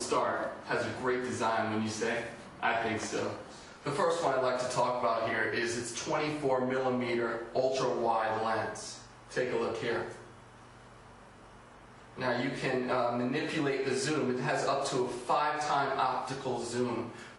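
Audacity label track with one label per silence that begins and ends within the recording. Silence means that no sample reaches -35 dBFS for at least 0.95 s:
10.100000	12.190000	silence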